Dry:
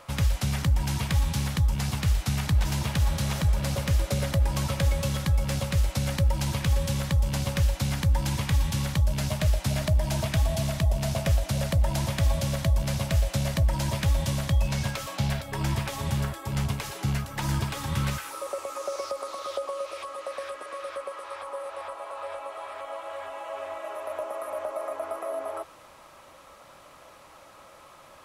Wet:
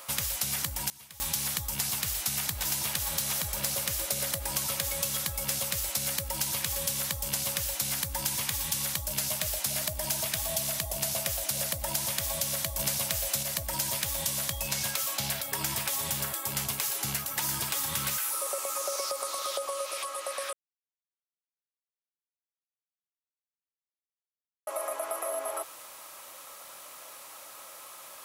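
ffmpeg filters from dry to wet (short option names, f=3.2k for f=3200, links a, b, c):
-filter_complex "[0:a]asettb=1/sr,asplit=3[a][b][c];[a]atrim=end=12.794[d];[b]atrim=start=12.79:end=13.43,asetpts=PTS-STARTPTS,afade=t=in:d=0.004:c=qsin,afade=t=out:st=0.636:d=0.004:c=qsin,acontrast=26[e];[c]atrim=start=13.426[f];[d][e]acrossfade=d=0.004:c1=hsin:c2=qsin[g];[g][f]acrossfade=d=0.004:c1=qsin:c2=hsin,asplit=5[h][i][j][k][l];[h]atrim=end=0.9,asetpts=PTS-STARTPTS,afade=t=out:st=0.6:d=0.3:c=log:silence=0.0707946[m];[i]atrim=start=0.9:end=1.2,asetpts=PTS-STARTPTS,volume=-23dB[n];[j]atrim=start=1.2:end=20.53,asetpts=PTS-STARTPTS,afade=t=in:d=0.3:c=log:silence=0.0707946,afade=t=out:st=19.326:d=0.004:c=hsin[o];[k]atrim=start=20.53:end=24.67,asetpts=PTS-STARTPTS,volume=0[p];[l]atrim=start=24.67,asetpts=PTS-STARTPTS,afade=t=in:d=0.004:c=hsin[q];[m][n][o][p][q]concat=n=5:v=0:a=1,aemphasis=mode=production:type=riaa,acompressor=threshold=-27dB:ratio=6"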